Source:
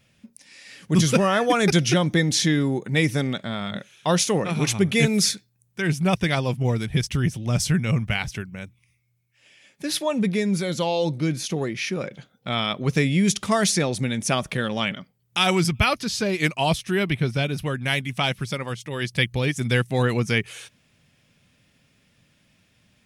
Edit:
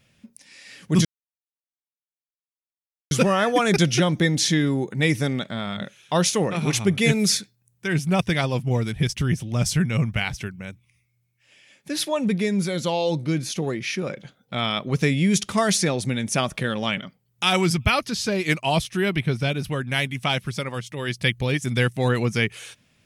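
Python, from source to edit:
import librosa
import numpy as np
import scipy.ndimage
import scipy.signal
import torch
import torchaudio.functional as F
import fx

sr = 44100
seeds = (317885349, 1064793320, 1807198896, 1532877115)

y = fx.edit(x, sr, fx.insert_silence(at_s=1.05, length_s=2.06), tone=tone)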